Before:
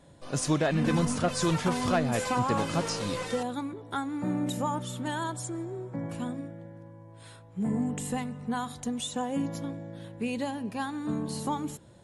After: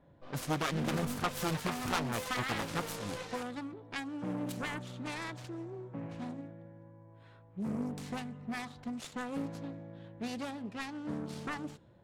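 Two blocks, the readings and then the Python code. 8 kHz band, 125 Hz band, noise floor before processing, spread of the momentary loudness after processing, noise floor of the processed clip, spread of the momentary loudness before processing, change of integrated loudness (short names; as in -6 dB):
-9.0 dB, -8.0 dB, -51 dBFS, 12 LU, -58 dBFS, 12 LU, -7.0 dB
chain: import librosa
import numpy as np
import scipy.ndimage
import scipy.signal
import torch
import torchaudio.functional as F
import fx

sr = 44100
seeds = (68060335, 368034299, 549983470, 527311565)

y = fx.self_delay(x, sr, depth_ms=0.59)
y = fx.env_lowpass(y, sr, base_hz=1900.0, full_db=-26.0)
y = F.gain(torch.from_numpy(y), -6.5).numpy()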